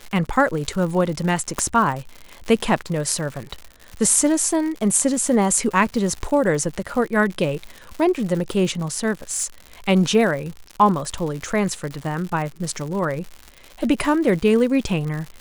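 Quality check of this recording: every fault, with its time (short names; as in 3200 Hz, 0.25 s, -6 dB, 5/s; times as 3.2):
crackle 140/s -28 dBFS
1.59 pop -6 dBFS
9.31–9.45 clipped -18 dBFS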